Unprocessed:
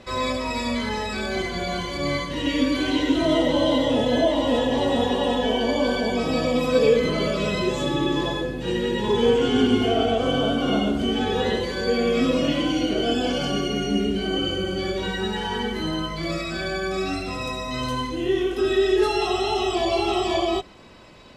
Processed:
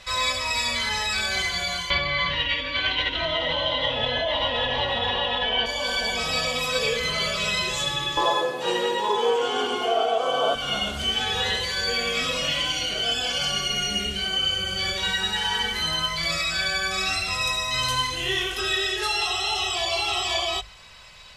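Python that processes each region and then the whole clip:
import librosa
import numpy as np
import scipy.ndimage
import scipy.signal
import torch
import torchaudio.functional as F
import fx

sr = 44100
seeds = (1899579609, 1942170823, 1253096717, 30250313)

y = fx.chain(x, sr, fx.lowpass(hz=3600.0, slope=24),
    fx.env_flatten(amount_pct=100), at=(1.9, 5.66))
y = fx.chain(y, sr, fx.highpass(hz=160.0, slope=24),
    fx.band_shelf(hz=600.0, db=14.0, octaves=2.4), at=(8.17, 10.55))
y = fx.tone_stack(y, sr, knobs='10-0-10')
y = fx.hum_notches(y, sr, base_hz=50, count=2)
y = fx.rider(y, sr, range_db=10, speed_s=0.5)
y = y * librosa.db_to_amplitude(6.5)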